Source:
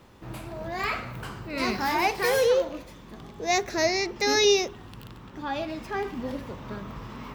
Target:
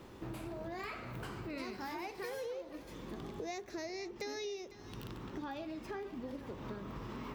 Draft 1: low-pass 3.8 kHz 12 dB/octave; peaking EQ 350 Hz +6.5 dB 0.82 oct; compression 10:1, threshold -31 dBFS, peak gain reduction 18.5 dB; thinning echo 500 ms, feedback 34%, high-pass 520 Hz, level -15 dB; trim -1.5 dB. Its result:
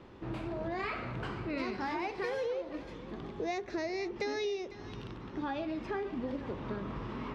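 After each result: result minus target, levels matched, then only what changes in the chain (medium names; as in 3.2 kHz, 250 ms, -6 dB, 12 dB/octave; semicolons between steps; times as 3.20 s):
compression: peak gain reduction -7 dB; 4 kHz band -3.0 dB
change: compression 10:1, threshold -38.5 dBFS, peak gain reduction 25 dB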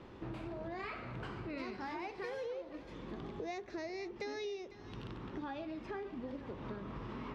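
4 kHz band -3.0 dB
remove: low-pass 3.8 kHz 12 dB/octave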